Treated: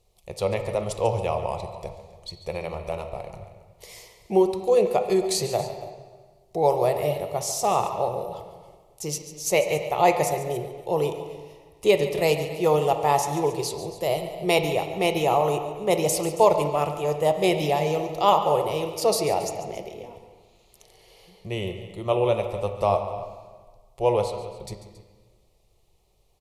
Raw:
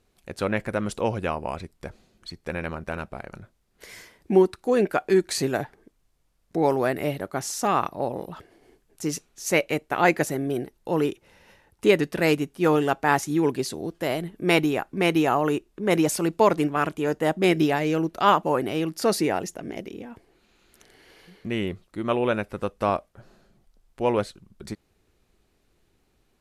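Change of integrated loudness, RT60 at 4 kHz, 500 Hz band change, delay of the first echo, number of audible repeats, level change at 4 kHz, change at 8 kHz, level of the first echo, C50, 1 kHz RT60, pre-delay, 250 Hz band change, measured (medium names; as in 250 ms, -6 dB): +0.5 dB, 1.2 s, +2.0 dB, 142 ms, 2, +1.5 dB, +3.0 dB, -14.5 dB, 7.5 dB, 1.5 s, 8 ms, -6.0 dB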